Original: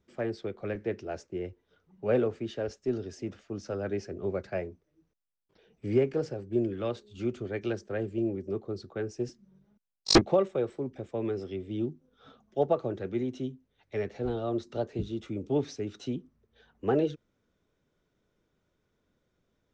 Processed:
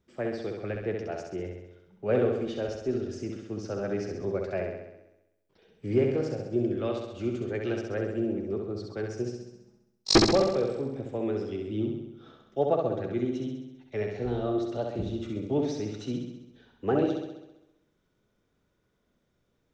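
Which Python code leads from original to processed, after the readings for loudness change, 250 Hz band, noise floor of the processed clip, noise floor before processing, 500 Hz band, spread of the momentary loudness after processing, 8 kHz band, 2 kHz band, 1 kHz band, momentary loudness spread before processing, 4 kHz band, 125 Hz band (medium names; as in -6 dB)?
+2.0 dB, +2.0 dB, -74 dBFS, -77 dBFS, +2.0 dB, 12 LU, +2.0 dB, +2.0 dB, +2.0 dB, 11 LU, +2.0 dB, +2.0 dB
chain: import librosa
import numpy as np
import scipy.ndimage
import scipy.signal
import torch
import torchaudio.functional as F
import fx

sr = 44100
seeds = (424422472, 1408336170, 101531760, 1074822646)

y = fx.room_flutter(x, sr, wall_m=11.3, rt60_s=0.93)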